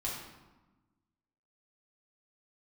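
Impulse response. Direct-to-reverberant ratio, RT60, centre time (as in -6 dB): -5.5 dB, 1.1 s, 57 ms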